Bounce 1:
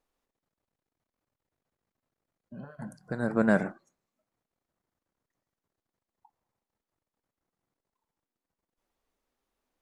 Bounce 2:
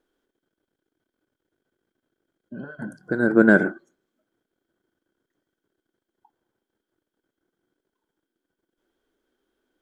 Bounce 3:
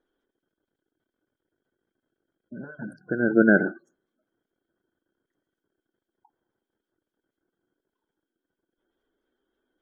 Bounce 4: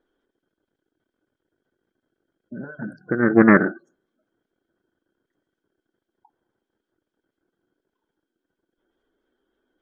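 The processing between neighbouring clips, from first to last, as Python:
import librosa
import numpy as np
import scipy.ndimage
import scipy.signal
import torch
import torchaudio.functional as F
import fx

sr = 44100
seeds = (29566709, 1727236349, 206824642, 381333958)

y1 = fx.small_body(x, sr, hz=(340.0, 1500.0, 3200.0), ring_ms=20, db=16)
y2 = fx.spec_gate(y1, sr, threshold_db=-25, keep='strong')
y2 = y2 * librosa.db_to_amplitude(-2.5)
y3 = fx.air_absorb(y2, sr, metres=71.0)
y3 = fx.doppler_dist(y3, sr, depth_ms=0.3)
y3 = y3 * librosa.db_to_amplitude(4.5)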